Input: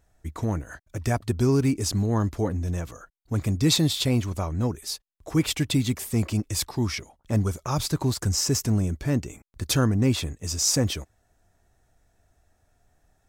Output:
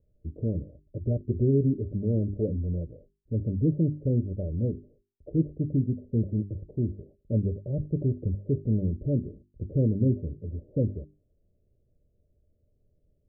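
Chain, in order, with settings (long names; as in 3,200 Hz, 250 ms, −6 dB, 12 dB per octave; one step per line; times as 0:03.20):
Chebyshev low-pass with heavy ripple 600 Hz, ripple 3 dB
mains-hum notches 50/100/150/200/250/300/350/400 Hz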